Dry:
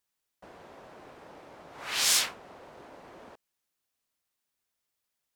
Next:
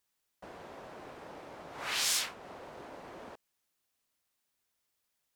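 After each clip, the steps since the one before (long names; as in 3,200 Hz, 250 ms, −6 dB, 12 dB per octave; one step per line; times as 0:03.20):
downward compressor 2 to 1, threshold −36 dBFS, peak gain reduction 9 dB
level +2 dB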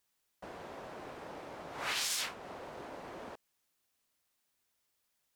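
brickwall limiter −26.5 dBFS, peak gain reduction 9 dB
level +1.5 dB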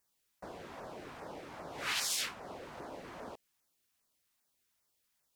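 auto-filter notch saw down 2.5 Hz 320–3,800 Hz
level +1 dB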